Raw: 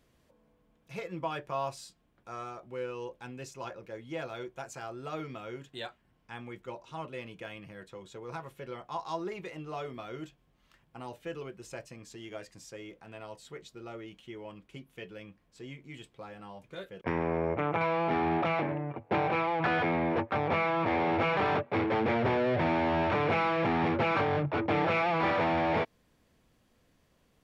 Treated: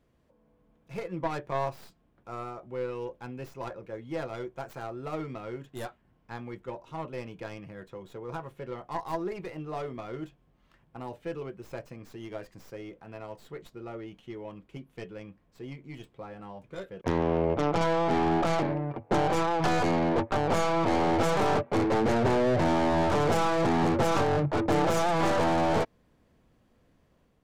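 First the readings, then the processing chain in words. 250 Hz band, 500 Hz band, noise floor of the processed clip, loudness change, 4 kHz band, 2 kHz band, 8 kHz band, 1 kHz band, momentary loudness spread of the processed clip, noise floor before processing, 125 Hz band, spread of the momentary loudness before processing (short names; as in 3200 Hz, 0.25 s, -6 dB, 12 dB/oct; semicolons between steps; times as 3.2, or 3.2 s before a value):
+4.0 dB, +3.5 dB, -67 dBFS, +2.5 dB, +3.0 dB, -1.5 dB, +9.5 dB, +2.0 dB, 19 LU, -70 dBFS, +4.0 dB, 19 LU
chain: tracing distortion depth 0.35 ms; AGC gain up to 4 dB; high shelf 2000 Hz -10 dB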